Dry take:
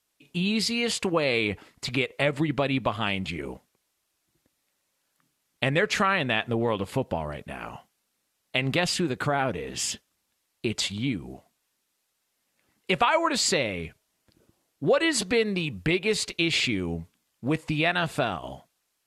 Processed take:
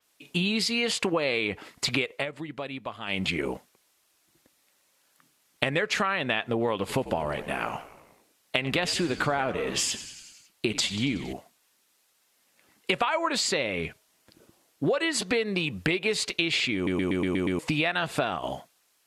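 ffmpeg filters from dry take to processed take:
-filter_complex "[0:a]asettb=1/sr,asplit=3[a][b][c];[a]atrim=end=6.774[d];[b]atrim=start=6.77:end=11.33,asetpts=PTS-STARTPTS,afade=t=in:d=0.004:c=qsin,afade=t=out:st=4.556:d=0.004:c=qsin,asplit=7[e][f][g][h][i][j][k];[f]adelay=92,afreqshift=-70,volume=-16dB[l];[g]adelay=184,afreqshift=-140,volume=-20dB[m];[h]adelay=276,afreqshift=-210,volume=-24dB[n];[i]adelay=368,afreqshift=-280,volume=-28dB[o];[j]adelay=460,afreqshift=-350,volume=-32.1dB[p];[k]adelay=552,afreqshift=-420,volume=-36.1dB[q];[e][l][m][n][o][p][q]amix=inputs=7:normalize=0,atrim=end_sample=201096[r];[c]atrim=start=11.326[s];[d][r]acrossfade=d=0.004:c1=hsin:c2=qsin[t];[t][s]acrossfade=d=0.004:c1=qsin:c2=hsin,asplit=10[u][v][w][x][y][z][aa][ab][ac][ad];[u]atrim=end=2.26,asetpts=PTS-STARTPTS,afade=t=out:st=2.09:d=0.17:silence=0.149624[ae];[v]atrim=start=2.26:end=3.07,asetpts=PTS-STARTPTS,volume=-16.5dB[af];[w]atrim=start=3.07:end=16.872,asetpts=PTS-STARTPTS,afade=t=in:d=0.17:silence=0.149624[ag];[x]atrim=start=16.748:end=16.872[ah];[y]atrim=start=16.748:end=16.872[ai];[z]atrim=start=16.748:end=16.872[aj];[aa]atrim=start=16.748:end=16.872[ak];[ab]atrim=start=16.748:end=16.872[al];[ac]atrim=start=16.748:end=16.872[am];[ad]atrim=start=17.588[an];[ae][af][ag]concat=n=3:v=0:a=1[ao];[ao][ah]acrossfade=d=0.004:c1=hsin:c2=hsin[ap];[ap][ai]acrossfade=d=0.004:c1=hsin:c2=hsin[aq];[aq][aj]acrossfade=d=0.004:c1=hsin:c2=hsin[ar];[ar][ak]acrossfade=d=0.004:c1=hsin:c2=hsin[as];[as][al]acrossfade=d=0.004:c1=hsin:c2=hsin[at];[at][am]acrossfade=d=0.004:c1=hsin:c2=hsin[au];[au][an]acrossfade=d=0.004:c1=hsin:c2=hsin,lowshelf=f=170:g=-10,acompressor=threshold=-31dB:ratio=6,adynamicequalizer=threshold=0.00355:dfrequency=5100:dqfactor=0.7:tfrequency=5100:tqfactor=0.7:attack=5:release=100:ratio=0.375:range=2.5:mode=cutabove:tftype=highshelf,volume=8dB"

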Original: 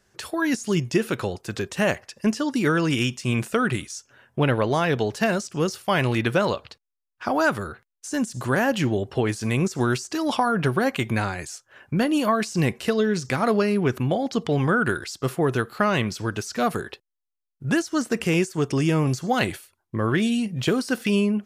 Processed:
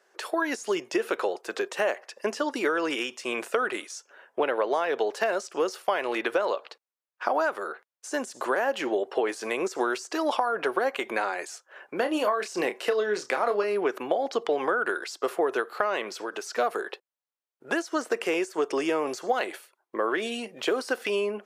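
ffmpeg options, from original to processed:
-filter_complex "[0:a]asettb=1/sr,asplit=3[a][b][c];[a]atrim=end=11.954[d];[b]atrim=start=11.95:end=13.64,asetpts=PTS-STARTPTS,afade=t=in:d=0.004:c=qsin,afade=t=out:st=1.686:d=0.004:c=qsin,asplit=2[e][f];[f]adelay=29,volume=-8.5dB[g];[e][g]amix=inputs=2:normalize=0,atrim=end_sample=74529[h];[c]atrim=start=13.636[i];[d][h]acrossfade=d=0.004:c1=hsin:c2=qsin[j];[j][i]acrossfade=d=0.004:c1=qsin:c2=hsin,asettb=1/sr,asplit=3[k][l][m];[k]atrim=end=16.094[n];[l]atrim=start=16.09:end=16.49,asetpts=PTS-STARTPTS,afade=t=in:d=0.004:c=qsin,afade=t=out:st=0.396:d=0.004:c=qsin,acompressor=threshold=-27dB:ratio=6:attack=3.2:release=140:knee=1:detection=peak[o];[m]atrim=start=16.486[p];[n][o]acrossfade=d=0.004:c1=hsin:c2=qsin[q];[q][p]acrossfade=d=0.004:c1=qsin:c2=hsin,highpass=f=410:w=0.5412,highpass=f=410:w=1.3066,acompressor=threshold=-26dB:ratio=6,highshelf=f=2.4k:g=-11,volume=5.5dB"

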